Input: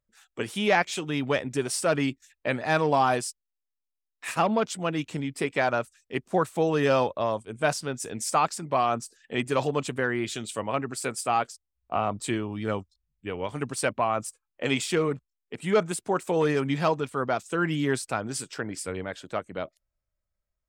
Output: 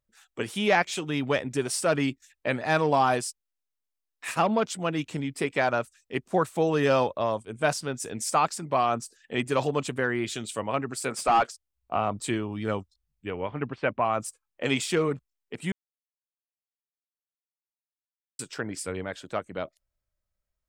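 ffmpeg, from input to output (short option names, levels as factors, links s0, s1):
-filter_complex "[0:a]asplit=3[s0][s1][s2];[s0]afade=t=out:st=11.1:d=0.02[s3];[s1]asplit=2[s4][s5];[s5]highpass=f=720:p=1,volume=7.94,asoftclip=type=tanh:threshold=0.237[s6];[s4][s6]amix=inputs=2:normalize=0,lowpass=f=2000:p=1,volume=0.501,afade=t=in:st=11.1:d=0.02,afade=t=out:st=11.5:d=0.02[s7];[s2]afade=t=in:st=11.5:d=0.02[s8];[s3][s7][s8]amix=inputs=3:normalize=0,asettb=1/sr,asplit=3[s9][s10][s11];[s9]atrim=end=13.304[s12];[s10]atrim=start=13.3:end=14.05,asetpts=PTS-STARTPTS,afade=t=in:d=0.004:c=qsin,afade=t=out:st=0.746:d=0.004:c=qsin,lowpass=f=2800:w=0.5412,lowpass=f=2800:w=1.3066[s13];[s11]atrim=start=14.046[s14];[s12][s13]acrossfade=d=0.004:c1=hsin:c2=qsin[s15];[s15][s14]acrossfade=d=0.004:c1=qsin:c2=hsin,asplit=3[s16][s17][s18];[s16]atrim=end=15.72,asetpts=PTS-STARTPTS,afade=t=out:st=15.716:d=0.004:c=hsin[s19];[s17]atrim=start=15.72:end=18.39,asetpts=PTS-STARTPTS,volume=0[s20];[s18]atrim=start=18.39,asetpts=PTS-STARTPTS,afade=t=in:d=0.004:c=hsin[s21];[s19][s20][s21]concat=n=3:v=0:a=1"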